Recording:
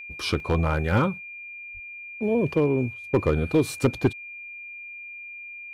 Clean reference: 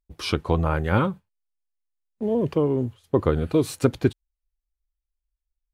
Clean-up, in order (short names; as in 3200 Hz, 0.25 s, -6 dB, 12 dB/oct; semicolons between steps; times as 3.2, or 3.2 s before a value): clip repair -13 dBFS; notch 2400 Hz, Q 30; 1.73–1.85 HPF 140 Hz 24 dB/oct; interpolate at 0.4, 1.4 ms